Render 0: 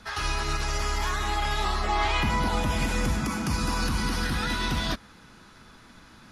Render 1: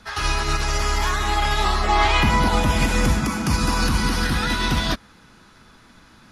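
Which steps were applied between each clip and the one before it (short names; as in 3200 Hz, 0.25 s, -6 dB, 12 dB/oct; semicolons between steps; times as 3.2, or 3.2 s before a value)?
upward expander 1.5:1, over -37 dBFS; gain +8 dB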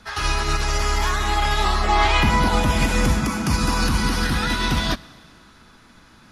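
Schroeder reverb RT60 2.2 s, combs from 30 ms, DRR 20 dB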